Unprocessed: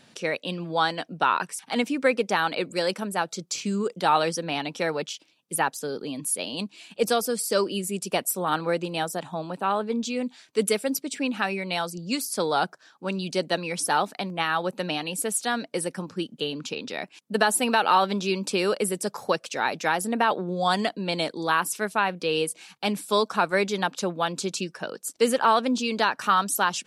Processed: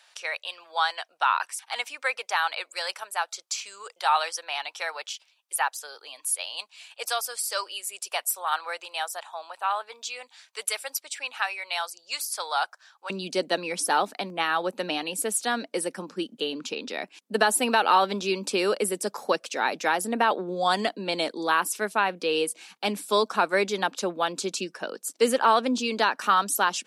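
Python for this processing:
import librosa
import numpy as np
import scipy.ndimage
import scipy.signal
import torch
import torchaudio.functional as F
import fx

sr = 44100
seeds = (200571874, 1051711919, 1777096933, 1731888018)

y = fx.highpass(x, sr, hz=fx.steps((0.0, 760.0), (13.1, 220.0)), slope=24)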